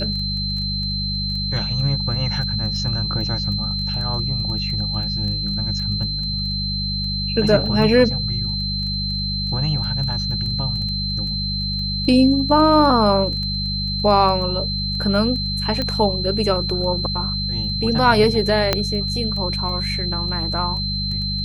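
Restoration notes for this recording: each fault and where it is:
crackle 10/s
hum 50 Hz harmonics 4 -26 dBFS
tone 4100 Hz -24 dBFS
15.82 pop -11 dBFS
18.73 pop -2 dBFS

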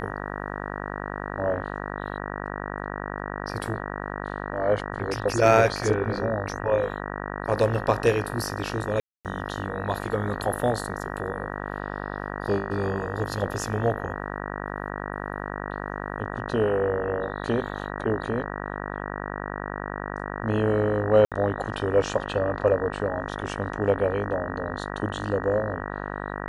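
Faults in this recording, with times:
buzz 50 Hz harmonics 38 -33 dBFS
9–9.25 gap 0.248 s
21.25–21.32 gap 67 ms

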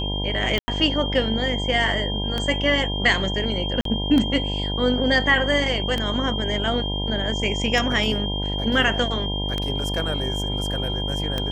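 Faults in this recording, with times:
buzz 50 Hz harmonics 20 -27 dBFS
tick 33 1/3 rpm -11 dBFS
tone 3200 Hz -28 dBFS
0.59–0.68 gap 90 ms
3.81–3.85 gap 43 ms

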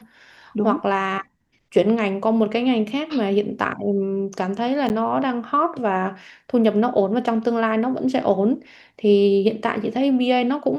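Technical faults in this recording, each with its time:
4.89–4.9 gap 9.8 ms

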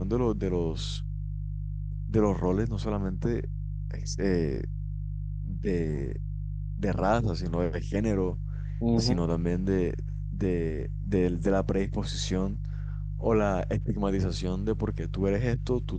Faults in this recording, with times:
hum 50 Hz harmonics 3 -33 dBFS

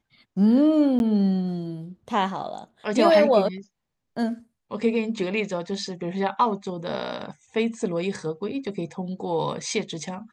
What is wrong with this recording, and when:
0.99–1 gap 11 ms

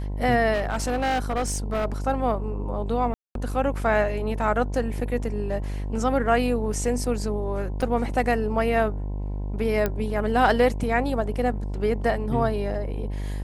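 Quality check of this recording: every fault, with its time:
buzz 50 Hz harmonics 21 -29 dBFS
0.53–1.86 clipped -20.5 dBFS
3.14–3.35 gap 0.212 s
7.82–7.83 gap 5.6 ms
9.86 pop -11 dBFS

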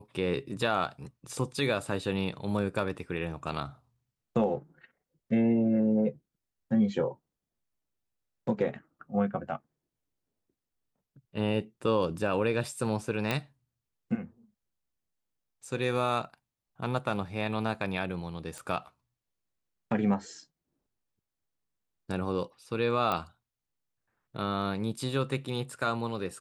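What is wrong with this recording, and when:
13.31 pop -14 dBFS
18.58 pop -27 dBFS
23.12 pop -17 dBFS

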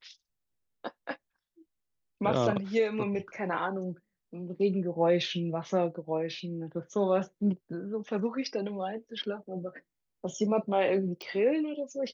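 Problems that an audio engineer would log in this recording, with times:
11.22 pop -25 dBFS

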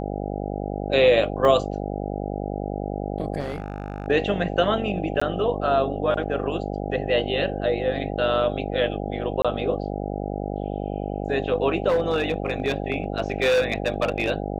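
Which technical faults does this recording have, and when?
buzz 50 Hz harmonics 16 -29 dBFS
1.45 gap 2.1 ms
3.39–4.08 clipped -24.5 dBFS
5.2–5.21 gap 15 ms
9.42–9.45 gap 26 ms
11.88–14.31 clipped -16.5 dBFS

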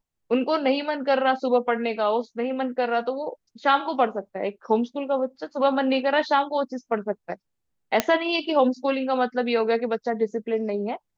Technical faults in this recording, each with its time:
8 pop -4 dBFS

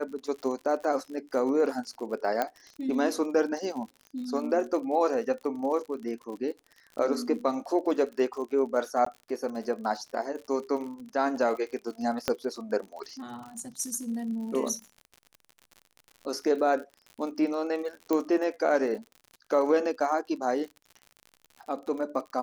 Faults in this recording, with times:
crackle 69/s -38 dBFS
2.42 pop -14 dBFS
9.05–9.06 gap 14 ms
12.28 pop -10 dBFS
18.13 pop -15 dBFS

